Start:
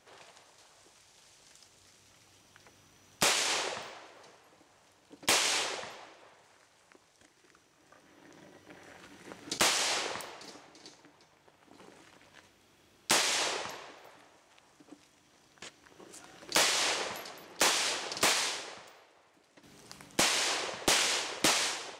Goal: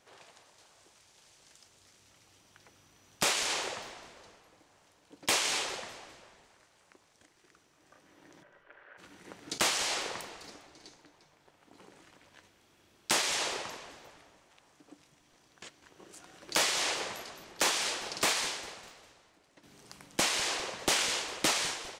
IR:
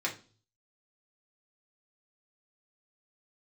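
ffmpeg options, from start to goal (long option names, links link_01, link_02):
-filter_complex "[0:a]asplit=3[link_01][link_02][link_03];[link_01]afade=type=out:start_time=8.42:duration=0.02[link_04];[link_02]highpass=frequency=480:width=0.5412,highpass=frequency=480:width=1.3066,equalizer=frequency=760:width_type=q:width=4:gain=-7,equalizer=frequency=1500:width_type=q:width=4:gain=7,equalizer=frequency=2200:width_type=q:width=4:gain=-4,lowpass=frequency=2700:width=0.5412,lowpass=frequency=2700:width=1.3066,afade=type=in:start_time=8.42:duration=0.02,afade=type=out:start_time=8.97:duration=0.02[link_05];[link_03]afade=type=in:start_time=8.97:duration=0.02[link_06];[link_04][link_05][link_06]amix=inputs=3:normalize=0,asplit=5[link_07][link_08][link_09][link_10][link_11];[link_08]adelay=201,afreqshift=-150,volume=-17dB[link_12];[link_09]adelay=402,afreqshift=-300,volume=-23.2dB[link_13];[link_10]adelay=603,afreqshift=-450,volume=-29.4dB[link_14];[link_11]adelay=804,afreqshift=-600,volume=-35.6dB[link_15];[link_07][link_12][link_13][link_14][link_15]amix=inputs=5:normalize=0,volume=-1.5dB"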